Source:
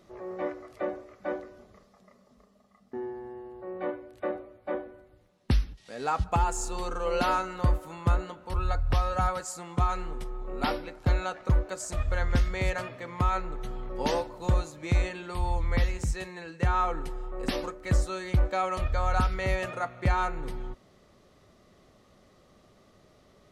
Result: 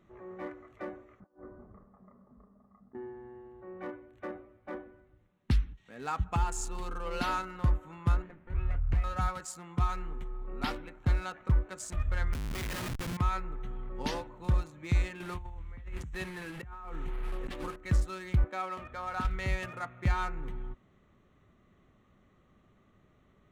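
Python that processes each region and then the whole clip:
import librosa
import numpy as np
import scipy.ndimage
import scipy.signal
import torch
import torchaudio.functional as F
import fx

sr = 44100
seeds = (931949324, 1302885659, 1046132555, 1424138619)

y = fx.chain(x, sr, fx.over_compress(threshold_db=-44.0, ratio=-0.5),
    fx.lowpass(hz=1300.0, slope=24), at=(1.2, 2.95))
y = fx.chain(y, sr, fx.lower_of_two(delay_ms=0.45),
    fx.lowpass(hz=1200.0, slope=6), at=(8.22, 9.04))
y = fx.chain(y, sr, fx.law_mismatch(coded='A'),
    fx.over_compress(threshold_db=-28.0, ratio=-1.0),
    fx.schmitt(flips_db=-39.5), at=(12.33, 13.17))
y = fx.chain(y, sr, fx.delta_mod(bps=64000, step_db=-37.0),
    fx.high_shelf(hz=4100.0, db=-8.0),
    fx.over_compress(threshold_db=-35.0, ratio=-1.0), at=(15.2, 17.76))
y = fx.chain(y, sr, fx.highpass(hz=220.0, slope=12),
    fx.high_shelf(hz=4600.0, db=-11.0), at=(18.44, 19.25))
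y = fx.wiener(y, sr, points=9)
y = fx.peak_eq(y, sr, hz=580.0, db=-9.5, octaves=1.3)
y = F.gain(torch.from_numpy(y), -2.0).numpy()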